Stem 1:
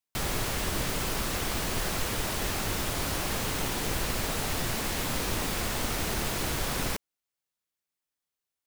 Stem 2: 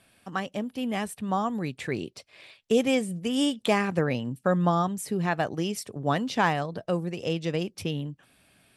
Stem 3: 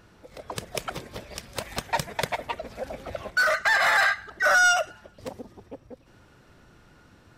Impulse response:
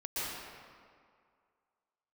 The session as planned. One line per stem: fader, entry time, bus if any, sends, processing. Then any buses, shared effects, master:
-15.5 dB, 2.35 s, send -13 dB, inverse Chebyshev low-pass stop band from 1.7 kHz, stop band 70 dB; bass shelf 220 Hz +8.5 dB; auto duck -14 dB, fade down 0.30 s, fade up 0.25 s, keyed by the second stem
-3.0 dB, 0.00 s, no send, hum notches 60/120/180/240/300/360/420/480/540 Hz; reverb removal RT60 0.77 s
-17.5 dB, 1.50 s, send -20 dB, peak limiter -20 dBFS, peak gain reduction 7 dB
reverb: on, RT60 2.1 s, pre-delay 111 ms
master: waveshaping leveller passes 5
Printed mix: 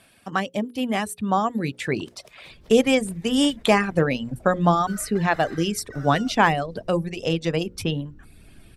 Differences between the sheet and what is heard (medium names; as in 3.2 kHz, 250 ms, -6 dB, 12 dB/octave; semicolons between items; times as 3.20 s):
stem 2 -3.0 dB -> +6.5 dB; stem 3: send off; master: missing waveshaping leveller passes 5